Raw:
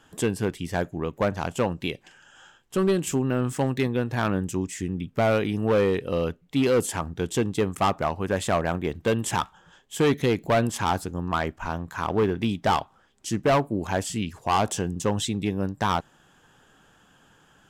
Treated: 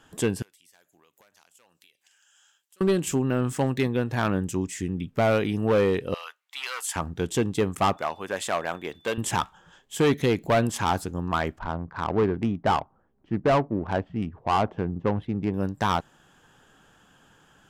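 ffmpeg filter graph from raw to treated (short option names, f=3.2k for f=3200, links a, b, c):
-filter_complex "[0:a]asettb=1/sr,asplit=3[a][b][c];[a]atrim=end=0.424[d];[b]atrim=start=0.42:end=2.81,asetpts=PTS-STARTPTS,afade=t=in:d=0.004:c=qsin,afade=t=out:st=2.386:d=0.004:c=qsin,highpass=62,aderivative,acompressor=threshold=-56dB:ratio=6:attack=3.2:release=140:knee=1:detection=peak[e];[c]atrim=start=2.806[f];[d][e]acrossfade=d=0.004:c1=hsin:c2=qsin[g];[g][f]acrossfade=d=0.004:c1=qsin:c2=hsin,asettb=1/sr,asplit=3[h][i][j];[h]atrim=end=6.144[k];[i]atrim=start=6.14:end=6.96,asetpts=PTS-STARTPTS,afade=t=in:d=0.004:c=qsin,afade=t=out:st=0.816:d=0.004:c=qsin,highpass=f=980:w=0.5412,highpass=f=980:w=1.3066,asplit=2[l][m];[m]adelay=13,volume=-13dB[n];[l][n]amix=inputs=2:normalize=0,atrim=end_sample=36162[o];[j]atrim=start=6.956[p];[k][o]acrossfade=d=0.004:c1=hsin:c2=qsin[q];[q][p]acrossfade=d=0.004:c1=qsin:c2=hsin,asettb=1/sr,asplit=3[r][s][t];[r]atrim=end=7.974[u];[s]atrim=start=7.97:end=9.18,asetpts=PTS-STARTPTS,afade=t=in:d=0.004:c=qsin,afade=t=out:st=1.206:d=0.004:c=qsin,highpass=f=710:p=1,aeval=exprs='val(0)+0.00126*sin(2*PI*3500*n/s)':c=same[v];[t]atrim=start=9.176[w];[u][v]acrossfade=d=0.004:c1=hsin:c2=qsin[x];[x][w]acrossfade=d=0.004:c1=qsin:c2=hsin,asettb=1/sr,asplit=3[y][z][aa];[y]atrim=end=11.594[ab];[z]atrim=start=11.59:end=15.54,asetpts=PTS-STARTPTS,afade=t=in:d=0.004:c=qsin,afade=t=out:st=3.946:d=0.004:c=qsin,lowpass=2.4k,adynamicsmooth=sensitivity=2:basefreq=950[ac];[aa]atrim=start=15.536[ad];[ab][ac]acrossfade=d=0.004:c1=hsin:c2=qsin[ae];[ae][ad]acrossfade=d=0.004:c1=qsin:c2=hsin"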